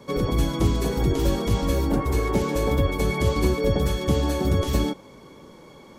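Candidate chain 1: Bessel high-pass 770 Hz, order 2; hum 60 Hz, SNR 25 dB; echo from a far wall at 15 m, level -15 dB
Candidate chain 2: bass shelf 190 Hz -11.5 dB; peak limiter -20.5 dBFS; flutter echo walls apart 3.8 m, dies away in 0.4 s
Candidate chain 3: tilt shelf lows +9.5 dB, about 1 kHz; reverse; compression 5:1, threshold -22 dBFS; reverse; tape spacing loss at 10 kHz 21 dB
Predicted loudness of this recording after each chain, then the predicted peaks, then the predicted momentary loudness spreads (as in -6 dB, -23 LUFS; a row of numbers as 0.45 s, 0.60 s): -31.5 LUFS, -28.0 LUFS, -27.0 LUFS; -18.0 dBFS, -15.0 dBFS, -13.0 dBFS; 18 LU, 15 LU, 12 LU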